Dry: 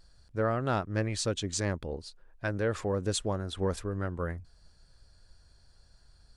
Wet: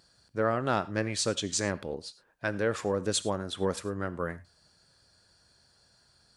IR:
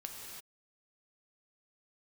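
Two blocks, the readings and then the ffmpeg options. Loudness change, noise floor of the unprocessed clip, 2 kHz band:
+1.5 dB, -62 dBFS, +3.0 dB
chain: -filter_complex "[0:a]highpass=140,asplit=2[s0][s1];[s1]tiltshelf=f=660:g=-5[s2];[1:a]atrim=start_sample=2205,afade=t=out:st=0.16:d=0.01,atrim=end_sample=7497[s3];[s2][s3]afir=irnorm=-1:irlink=0,volume=0.501[s4];[s0][s4]amix=inputs=2:normalize=0"

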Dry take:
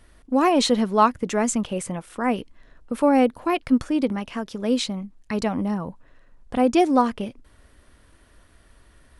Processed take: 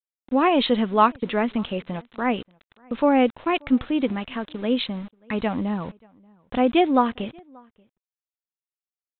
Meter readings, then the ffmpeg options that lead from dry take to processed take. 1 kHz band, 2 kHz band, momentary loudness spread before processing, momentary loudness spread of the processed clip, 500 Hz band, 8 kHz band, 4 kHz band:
0.0 dB, +2.0 dB, 12 LU, 12 LU, -0.5 dB, under -40 dB, 0.0 dB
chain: -filter_complex "[0:a]aemphasis=mode=production:type=75fm,aresample=8000,aeval=exprs='val(0)*gte(abs(val(0)),0.00944)':c=same,aresample=44100,asplit=2[s0][s1];[s1]adelay=583.1,volume=0.0398,highshelf=f=4000:g=-13.1[s2];[s0][s2]amix=inputs=2:normalize=0"

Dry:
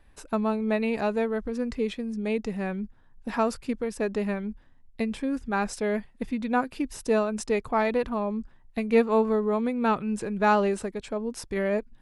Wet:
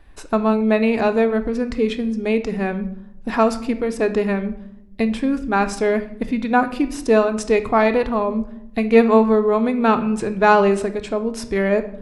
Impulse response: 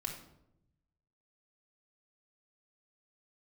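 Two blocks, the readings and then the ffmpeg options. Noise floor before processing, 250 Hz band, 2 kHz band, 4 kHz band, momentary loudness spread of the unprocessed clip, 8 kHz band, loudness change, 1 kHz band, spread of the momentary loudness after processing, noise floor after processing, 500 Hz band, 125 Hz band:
-56 dBFS, +8.5 dB, +8.5 dB, +8.0 dB, 9 LU, +5.0 dB, +8.5 dB, +8.5 dB, 9 LU, -39 dBFS, +8.5 dB, +7.5 dB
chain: -filter_complex "[0:a]asplit=2[s0][s1];[1:a]atrim=start_sample=2205,lowpass=7000[s2];[s1][s2]afir=irnorm=-1:irlink=0,volume=0.75[s3];[s0][s3]amix=inputs=2:normalize=0,volume=1.68"

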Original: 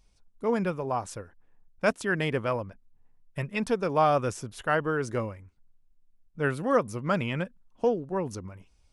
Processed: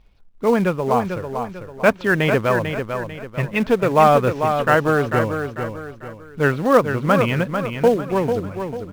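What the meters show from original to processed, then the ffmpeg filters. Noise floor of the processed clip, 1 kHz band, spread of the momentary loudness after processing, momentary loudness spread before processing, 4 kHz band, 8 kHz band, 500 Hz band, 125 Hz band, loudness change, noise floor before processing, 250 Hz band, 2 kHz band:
-43 dBFS, +10.5 dB, 12 LU, 13 LU, +9.0 dB, +4.5 dB, +10.5 dB, +10.5 dB, +9.5 dB, -64 dBFS, +10.5 dB, +10.5 dB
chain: -filter_complex "[0:a]lowpass=f=3500:w=0.5412,lowpass=f=3500:w=1.3066,asplit=2[s0][s1];[s1]acrusher=bits=2:mode=log:mix=0:aa=0.000001,volume=0.316[s2];[s0][s2]amix=inputs=2:normalize=0,aecho=1:1:445|890|1335|1780:0.447|0.17|0.0645|0.0245,volume=2.24"

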